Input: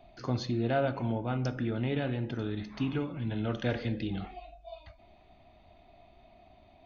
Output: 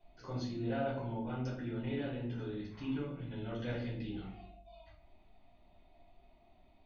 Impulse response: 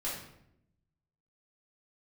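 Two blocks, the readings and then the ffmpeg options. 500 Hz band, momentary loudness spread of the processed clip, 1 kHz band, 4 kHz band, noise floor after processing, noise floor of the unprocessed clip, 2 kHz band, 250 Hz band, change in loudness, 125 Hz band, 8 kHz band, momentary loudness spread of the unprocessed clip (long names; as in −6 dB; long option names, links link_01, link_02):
−7.0 dB, 14 LU, −7.5 dB, −8.0 dB, −65 dBFS, −59 dBFS, −8.0 dB, −6.0 dB, −7.0 dB, −7.5 dB, can't be measured, 16 LU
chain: -filter_complex "[1:a]atrim=start_sample=2205,asetrate=70560,aresample=44100[link_01];[0:a][link_01]afir=irnorm=-1:irlink=0,volume=-7.5dB"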